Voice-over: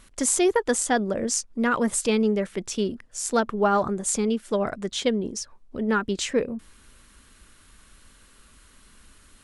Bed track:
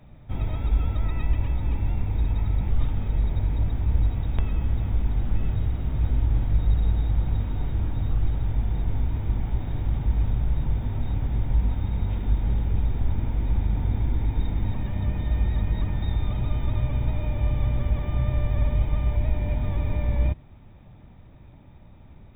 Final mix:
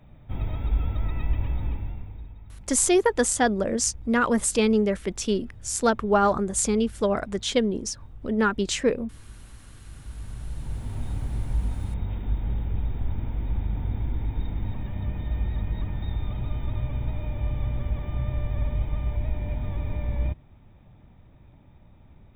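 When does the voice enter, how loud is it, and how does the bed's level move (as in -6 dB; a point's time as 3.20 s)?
2.50 s, +1.0 dB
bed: 1.64 s -2 dB
2.39 s -20.5 dB
9.78 s -20.5 dB
10.98 s -4 dB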